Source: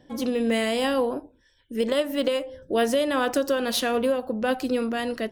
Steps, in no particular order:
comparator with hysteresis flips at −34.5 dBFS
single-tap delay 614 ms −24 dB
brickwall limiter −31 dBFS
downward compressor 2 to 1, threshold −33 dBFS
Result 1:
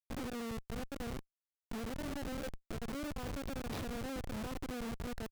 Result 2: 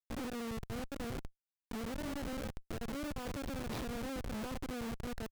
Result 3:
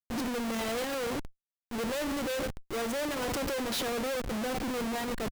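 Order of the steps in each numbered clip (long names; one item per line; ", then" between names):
brickwall limiter, then single-tap delay, then downward compressor, then comparator with hysteresis
single-tap delay, then brickwall limiter, then comparator with hysteresis, then downward compressor
single-tap delay, then comparator with hysteresis, then downward compressor, then brickwall limiter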